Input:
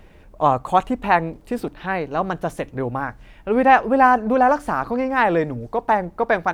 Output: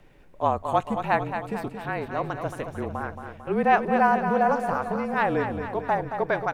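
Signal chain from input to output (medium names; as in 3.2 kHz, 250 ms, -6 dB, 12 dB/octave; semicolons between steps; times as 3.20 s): feedback delay 224 ms, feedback 57%, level -8 dB; frequency shift -35 Hz; trim -6.5 dB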